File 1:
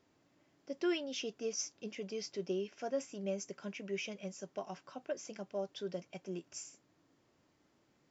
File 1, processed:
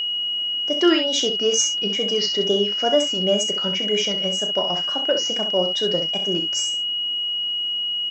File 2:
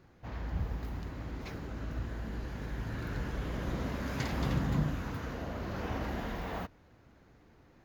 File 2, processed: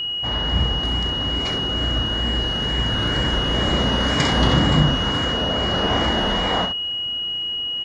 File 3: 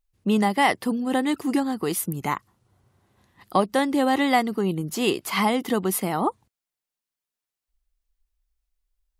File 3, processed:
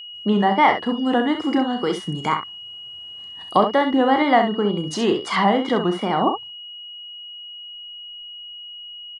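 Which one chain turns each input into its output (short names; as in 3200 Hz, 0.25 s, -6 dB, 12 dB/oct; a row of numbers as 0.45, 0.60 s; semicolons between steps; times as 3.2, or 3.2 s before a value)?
low shelf 300 Hz -6 dB; notch 2500 Hz, Q 6.9; treble ducked by the level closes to 2100 Hz, closed at -22 dBFS; wow and flutter 120 cents; downsampling 22050 Hz; dynamic EQ 2600 Hz, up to -5 dB, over -54 dBFS, Q 5; on a send: early reflections 34 ms -10 dB, 65 ms -8 dB; on the sum: whine 2900 Hz -40 dBFS; match loudness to -20 LUFS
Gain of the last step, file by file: +18.0, +17.0, +5.5 dB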